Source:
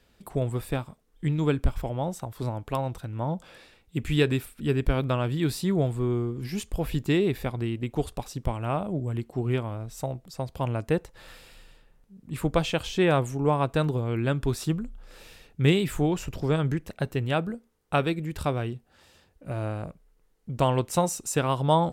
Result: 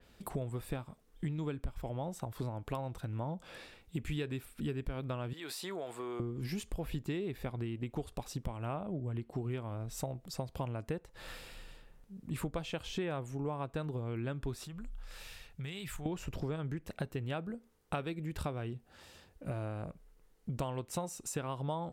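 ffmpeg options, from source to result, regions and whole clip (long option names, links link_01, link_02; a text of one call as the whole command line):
ffmpeg -i in.wav -filter_complex "[0:a]asettb=1/sr,asplit=3[link_01][link_02][link_03];[link_01]atrim=end=5.334[link_04];[link_02]atrim=start=5.33:end=6.2,asetpts=PTS-STARTPTS,afade=type=in:duration=0.004:curve=qsin,afade=type=out:start_time=0.866:duration=0.004:curve=qsin,highpass=610,acompressor=threshold=-35dB:ratio=6:attack=3.2:release=140:knee=1:detection=peak[link_05];[link_03]atrim=start=6.196[link_06];[link_04][link_05]acrossfade=duration=0.004:curve1=hsin:curve2=qsin[link_07];[link_07][link_06]acrossfade=duration=0.004:curve1=qsin:curve2=hsin,asettb=1/sr,asplit=3[link_08][link_09][link_10];[link_08]atrim=end=8.744[link_11];[link_09]atrim=start=8.74:end=9.32,asetpts=PTS-STARTPTS,afade=type=in:duration=0.004:curve=qsin,afade=type=out:start_time=0.576:duration=0.004:curve=qsin,lowpass=11000,equalizer=frequency=6800:width=1.2:gain=-7.5[link_12];[link_10]atrim=start=9.316[link_13];[link_11][link_12]acrossfade=duration=0.004:curve1=hsin:curve2=qsin[link_14];[link_14][link_13]acrossfade=duration=0.004:curve1=qsin:curve2=hsin,asettb=1/sr,asplit=3[link_15][link_16][link_17];[link_15]atrim=end=14.664[link_18];[link_16]atrim=start=14.66:end=16.06,asetpts=PTS-STARTPTS,afade=type=in:duration=0.004:curve=qsin,afade=type=out:start_time=1.396:duration=0.004:curve=qsin,equalizer=frequency=320:width_type=o:width=2:gain=-13,acompressor=threshold=-40dB:ratio=6:attack=3.2:release=140:knee=1:detection=peak[link_19];[link_17]atrim=start=16.056[link_20];[link_18][link_19]acrossfade=duration=0.004:curve1=hsin:curve2=qsin[link_21];[link_21][link_20]acrossfade=duration=0.004:curve1=qsin:curve2=hsin,acompressor=threshold=-36dB:ratio=6,adynamicequalizer=threshold=0.00141:dfrequency=3500:dqfactor=0.7:tfrequency=3500:tqfactor=0.7:attack=5:release=100:ratio=0.375:range=2:mode=cutabove:tftype=highshelf,volume=1dB" out.wav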